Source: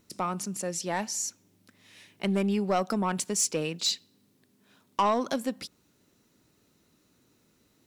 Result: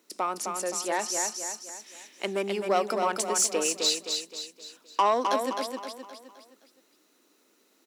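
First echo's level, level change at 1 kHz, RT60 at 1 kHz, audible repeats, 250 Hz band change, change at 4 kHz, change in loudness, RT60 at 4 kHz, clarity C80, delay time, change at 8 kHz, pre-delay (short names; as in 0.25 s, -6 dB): -5.0 dB, +3.5 dB, none, 5, -6.0 dB, +3.5 dB, +1.5 dB, none, none, 0.26 s, +3.5 dB, none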